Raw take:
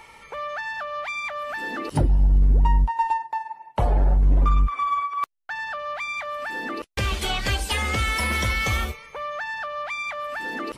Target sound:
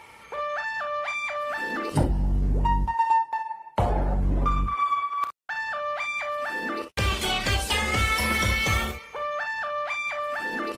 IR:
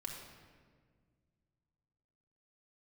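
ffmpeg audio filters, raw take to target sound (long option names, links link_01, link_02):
-af "highpass=62,aecho=1:1:32|51|63:0.299|0.2|0.266" -ar 48000 -c:a libopus -b:a 20k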